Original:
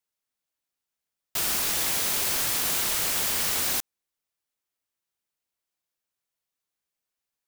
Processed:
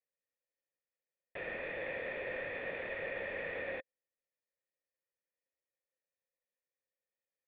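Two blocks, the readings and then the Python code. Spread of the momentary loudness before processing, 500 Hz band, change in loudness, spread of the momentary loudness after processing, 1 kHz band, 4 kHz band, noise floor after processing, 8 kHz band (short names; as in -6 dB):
3 LU, +0.5 dB, -16.0 dB, 4 LU, -14.0 dB, -27.0 dB, under -85 dBFS, under -40 dB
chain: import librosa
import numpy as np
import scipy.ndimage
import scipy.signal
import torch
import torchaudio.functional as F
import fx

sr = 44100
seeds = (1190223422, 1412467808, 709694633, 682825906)

y = fx.formant_cascade(x, sr, vowel='e')
y = y * librosa.db_to_amplitude(7.0)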